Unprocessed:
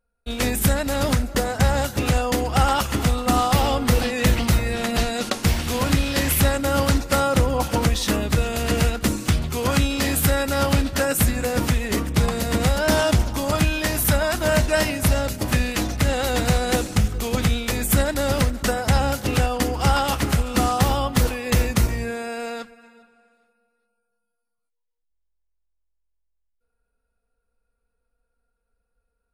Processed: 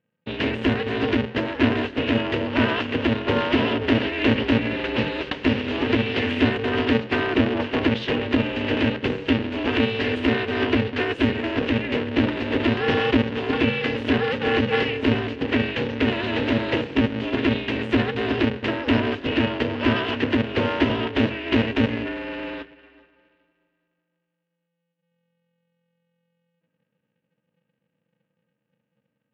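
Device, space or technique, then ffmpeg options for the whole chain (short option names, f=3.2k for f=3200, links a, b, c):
ring modulator pedal into a guitar cabinet: -af "aeval=exprs='val(0)*sgn(sin(2*PI*170*n/s))':c=same,highpass=87,equalizer=f=270:t=q:w=4:g=8,equalizer=f=490:t=q:w=4:g=7,equalizer=f=720:t=q:w=4:g=-6,equalizer=f=1.2k:t=q:w=4:g=-6,equalizer=f=1.8k:t=q:w=4:g=4,equalizer=f=2.8k:t=q:w=4:g=8,lowpass=f=3.4k:w=0.5412,lowpass=f=3.4k:w=1.3066,volume=-3.5dB"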